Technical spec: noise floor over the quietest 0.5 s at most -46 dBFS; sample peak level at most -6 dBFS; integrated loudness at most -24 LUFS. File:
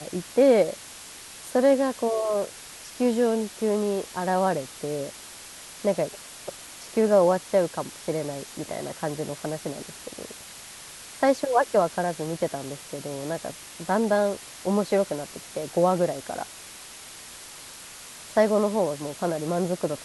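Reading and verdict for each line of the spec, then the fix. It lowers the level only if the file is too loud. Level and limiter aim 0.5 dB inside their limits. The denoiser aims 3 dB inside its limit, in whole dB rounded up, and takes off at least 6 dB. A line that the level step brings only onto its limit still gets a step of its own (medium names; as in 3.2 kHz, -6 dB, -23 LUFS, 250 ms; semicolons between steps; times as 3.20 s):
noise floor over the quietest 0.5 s -43 dBFS: fail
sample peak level -8.5 dBFS: pass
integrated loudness -25.5 LUFS: pass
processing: noise reduction 6 dB, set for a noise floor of -43 dBFS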